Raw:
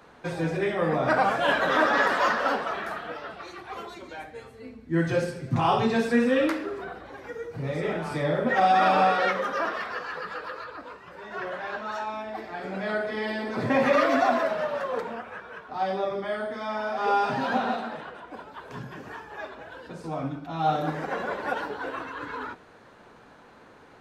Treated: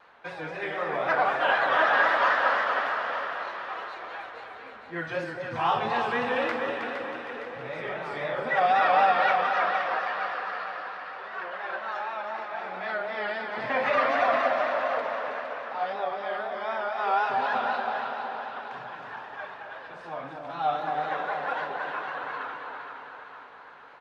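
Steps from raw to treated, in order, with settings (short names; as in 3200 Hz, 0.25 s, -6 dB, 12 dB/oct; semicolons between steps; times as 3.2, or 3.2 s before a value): three-band isolator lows -16 dB, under 590 Hz, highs -18 dB, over 4100 Hz; on a send: feedback echo 0.318 s, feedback 45%, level -6.5 dB; on the sum: vibrato 3.9 Hz 72 cents; echo with dull and thin repeats by turns 0.231 s, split 920 Hz, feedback 73%, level -5 dB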